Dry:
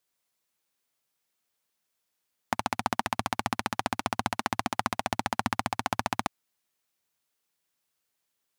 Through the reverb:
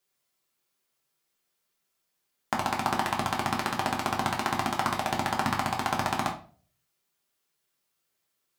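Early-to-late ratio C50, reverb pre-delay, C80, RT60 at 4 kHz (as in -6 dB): 10.0 dB, 3 ms, 15.0 dB, 0.30 s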